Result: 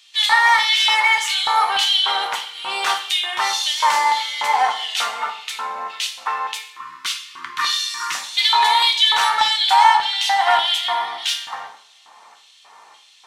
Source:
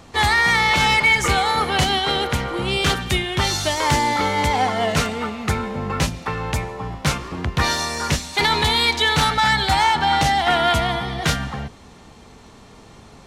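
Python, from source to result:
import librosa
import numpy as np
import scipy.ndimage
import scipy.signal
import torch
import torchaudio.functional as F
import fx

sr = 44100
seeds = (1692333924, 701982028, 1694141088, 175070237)

y = fx.ellip_bandstop(x, sr, low_hz=350.0, high_hz=1100.0, order=3, stop_db=40, at=(6.59, 8.15))
y = fx.filter_lfo_highpass(y, sr, shape='square', hz=1.7, low_hz=940.0, high_hz=3200.0, q=2.8)
y = fx.rev_double_slope(y, sr, seeds[0], early_s=0.45, late_s=1.7, knee_db=-25, drr_db=2.0)
y = y * librosa.db_to_amplitude(-3.5)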